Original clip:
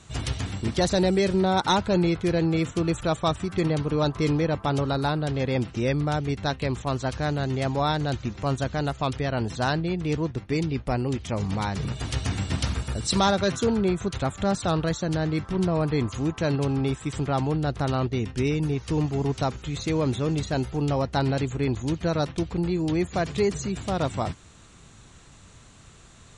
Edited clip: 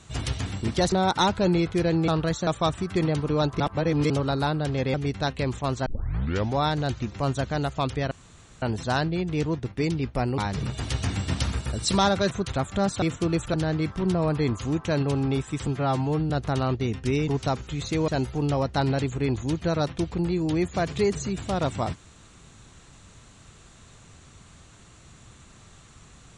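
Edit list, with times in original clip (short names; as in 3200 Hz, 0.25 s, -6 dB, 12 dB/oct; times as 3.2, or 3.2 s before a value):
0.92–1.41 cut
2.57–3.09 swap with 14.68–15.07
4.22–4.72 reverse
5.56–6.17 cut
7.09 tape start 0.71 s
9.34 insert room tone 0.51 s
11.1–11.6 cut
13.53–13.97 cut
17.2–17.62 stretch 1.5×
18.6–19.23 cut
20.03–20.47 cut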